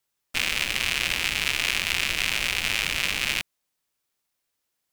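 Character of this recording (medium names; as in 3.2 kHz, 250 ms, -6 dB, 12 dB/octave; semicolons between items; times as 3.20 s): noise floor -80 dBFS; spectral tilt -1.5 dB/octave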